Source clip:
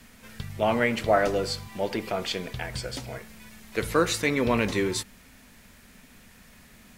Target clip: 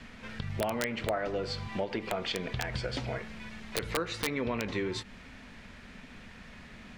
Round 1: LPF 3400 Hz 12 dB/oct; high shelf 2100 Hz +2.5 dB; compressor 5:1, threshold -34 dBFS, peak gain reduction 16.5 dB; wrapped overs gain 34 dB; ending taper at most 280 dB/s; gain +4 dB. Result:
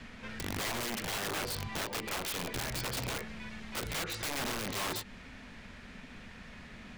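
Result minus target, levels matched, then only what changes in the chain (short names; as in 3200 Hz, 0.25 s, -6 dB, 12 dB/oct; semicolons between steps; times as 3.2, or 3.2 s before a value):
wrapped overs: distortion +20 dB
change: wrapped overs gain 23.5 dB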